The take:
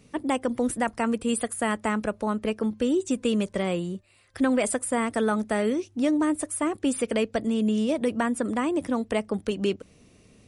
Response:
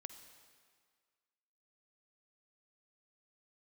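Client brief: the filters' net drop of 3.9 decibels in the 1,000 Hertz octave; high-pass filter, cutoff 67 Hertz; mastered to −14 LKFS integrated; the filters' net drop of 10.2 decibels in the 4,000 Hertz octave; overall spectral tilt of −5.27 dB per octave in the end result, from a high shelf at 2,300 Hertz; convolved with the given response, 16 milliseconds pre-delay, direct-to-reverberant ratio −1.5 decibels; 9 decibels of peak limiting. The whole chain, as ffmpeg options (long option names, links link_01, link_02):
-filter_complex "[0:a]highpass=67,equalizer=frequency=1000:width_type=o:gain=-3.5,highshelf=frequency=2300:gain=-7,equalizer=frequency=4000:width_type=o:gain=-8.5,alimiter=limit=-22.5dB:level=0:latency=1,asplit=2[link_01][link_02];[1:a]atrim=start_sample=2205,adelay=16[link_03];[link_02][link_03]afir=irnorm=-1:irlink=0,volume=6.5dB[link_04];[link_01][link_04]amix=inputs=2:normalize=0,volume=14dB"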